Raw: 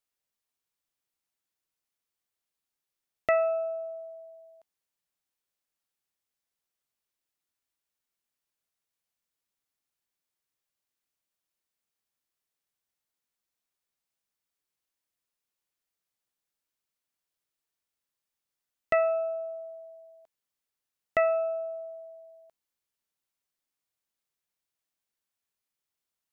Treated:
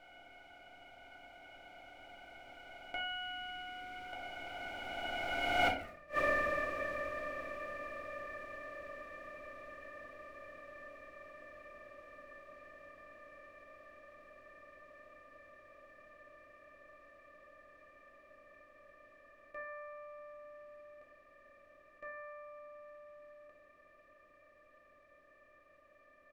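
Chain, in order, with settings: spectral levelling over time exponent 0.2; Doppler pass-by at 5.82 s, 36 m/s, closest 1.9 m; comb 3.4 ms, depth 45%; in parallel at -9 dB: integer overflow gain 31.5 dB; on the sum: inverted gate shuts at -37 dBFS, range -34 dB; simulated room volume 52 m³, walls mixed, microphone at 0.77 m; trim +16 dB

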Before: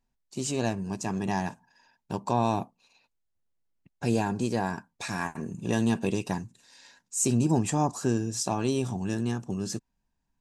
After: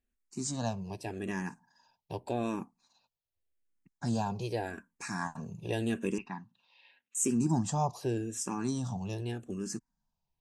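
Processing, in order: 6.18–7.15 s: cabinet simulation 270–3200 Hz, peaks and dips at 310 Hz -9 dB, 440 Hz -9 dB, 640 Hz -8 dB, 1.5 kHz -4 dB, 2.7 kHz +6 dB; barber-pole phaser -0.85 Hz; trim -2.5 dB

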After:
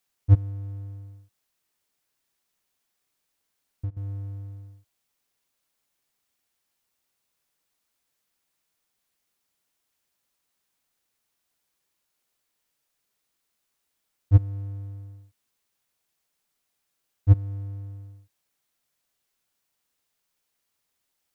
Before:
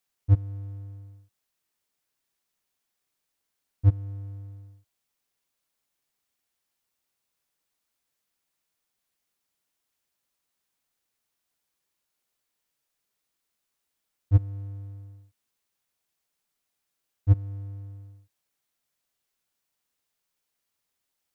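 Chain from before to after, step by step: 0.48–3.97 s: compression 16:1, threshold -32 dBFS, peak gain reduction 20 dB; trim +3 dB

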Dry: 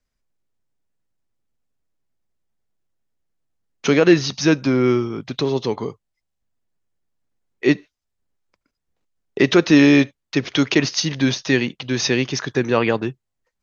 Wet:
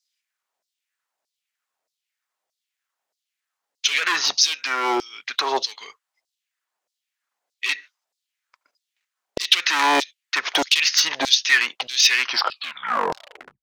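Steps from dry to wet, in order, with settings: tape stop on the ending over 1.44 s; saturation -3 dBFS, distortion -23 dB; dynamic bell 100 Hz, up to -6 dB, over -34 dBFS, Q 1.4; overload inside the chain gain 16.5 dB; LFO high-pass saw down 1.6 Hz 580–5000 Hz; trim +5 dB

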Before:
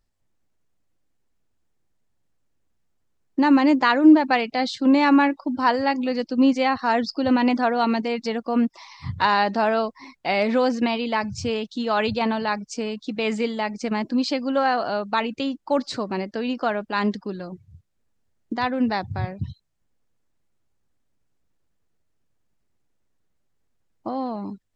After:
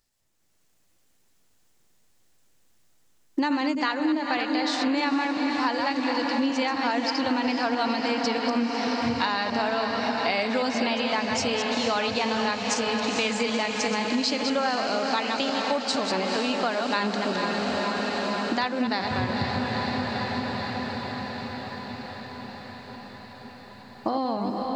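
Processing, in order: chunks repeated in reverse 125 ms, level -7 dB; bass shelf 130 Hz -7.5 dB; level rider gain up to 7 dB; treble shelf 2.5 kHz +10 dB; on a send: echo that smears into a reverb 477 ms, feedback 75%, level -8 dB; on the sum: compression 6:1, threshold -23 dBFS, peak gain reduction 16 dB

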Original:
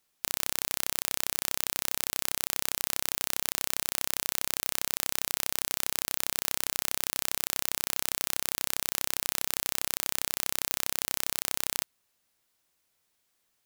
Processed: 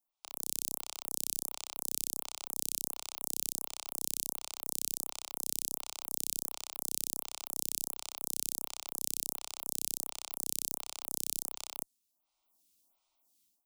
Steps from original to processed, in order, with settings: static phaser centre 460 Hz, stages 6; level rider; dynamic bell 8.2 kHz, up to +6 dB, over -49 dBFS, Q 0.74; lamp-driven phase shifter 1.4 Hz; trim -7.5 dB

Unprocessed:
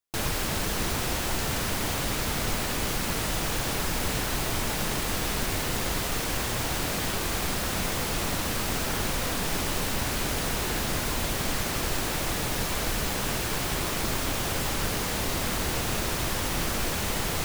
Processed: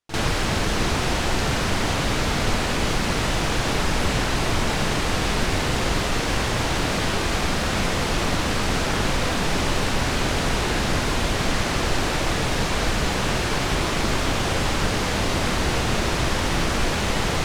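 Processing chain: distance through air 69 m; pre-echo 46 ms -12 dB; trim +7 dB

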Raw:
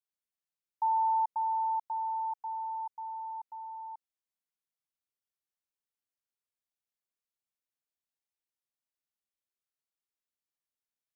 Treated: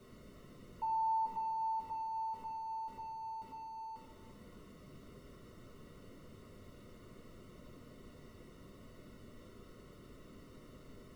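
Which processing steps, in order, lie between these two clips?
jump at every zero crossing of -42.5 dBFS; boxcar filter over 54 samples; reverberation RT60 1.2 s, pre-delay 5 ms, DRR -1 dB; trim +10 dB

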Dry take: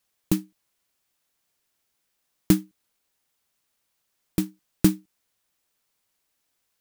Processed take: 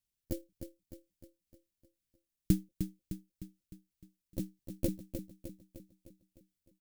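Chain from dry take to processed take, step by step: pitch shift switched off and on +9.5 st, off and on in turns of 244 ms; amplifier tone stack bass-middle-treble 10-0-1; feedback delay 305 ms, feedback 52%, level -8.5 dB; trim +7.5 dB

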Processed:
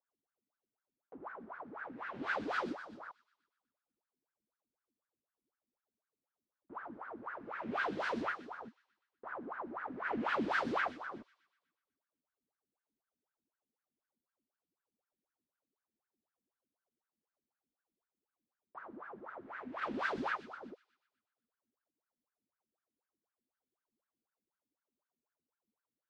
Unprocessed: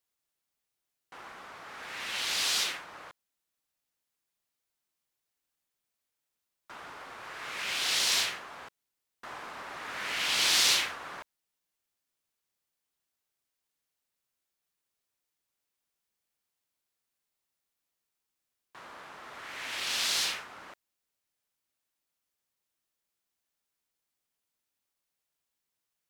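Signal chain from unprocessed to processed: gate -34 dBFS, range -10 dB; tilt EQ -4.5 dB/octave; in parallel at 0 dB: compression, threshold -44 dBFS, peak gain reduction 15.5 dB; on the sum: saturation -27.5 dBFS, distortion -15 dB; wah-wah 4 Hz 220–1600 Hz, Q 10; on a send: feedback echo behind a high-pass 123 ms, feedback 53%, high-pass 4.2 kHz, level -6 dB; on the sum: trim +14.5 dB

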